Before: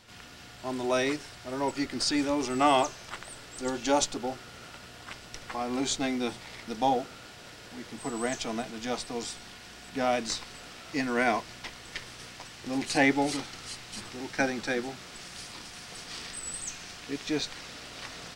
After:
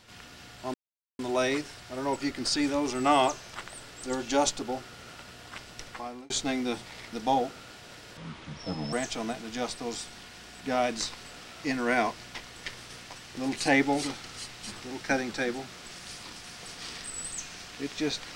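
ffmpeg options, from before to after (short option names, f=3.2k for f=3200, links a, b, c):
-filter_complex "[0:a]asplit=5[a][b][c][d][e];[a]atrim=end=0.74,asetpts=PTS-STARTPTS,afade=t=out:st=0.736:d=0.004:c=hsin,apad=pad_dur=0.45[f];[b]atrim=start=0.74:end=5.85,asetpts=PTS-STARTPTS,afade=t=in:d=0.004:c=hsin,afade=t=out:st=4.66:d=0.45[g];[c]atrim=start=5.85:end=7.724,asetpts=PTS-STARTPTS,afade=t=in:d=0.004:c=hsin[h];[d]atrim=start=7.72:end=8.22,asetpts=PTS-STARTPTS,asetrate=29106,aresample=44100,atrim=end_sample=33409,asetpts=PTS-STARTPTS[i];[e]atrim=start=8.216[j];[f][g][h]concat=n=3:v=0:a=1[k];[k][i]acrossfade=d=0.004:c1=hsin:c2=hsin[l];[l][j]acrossfade=d=0.004:c1=hsin:c2=hsin"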